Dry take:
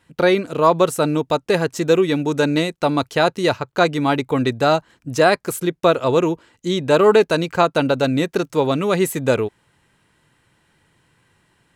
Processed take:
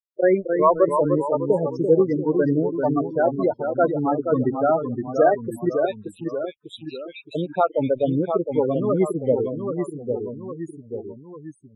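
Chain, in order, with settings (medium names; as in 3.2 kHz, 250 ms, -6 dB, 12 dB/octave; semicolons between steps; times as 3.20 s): 5.85–7.35 s: steep high-pass 2.1 kHz 48 dB/octave; crossover distortion -28 dBFS; loudest bins only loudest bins 8; vibrato 1.5 Hz 40 cents; ever faster or slower copies 251 ms, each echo -1 st, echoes 3, each echo -6 dB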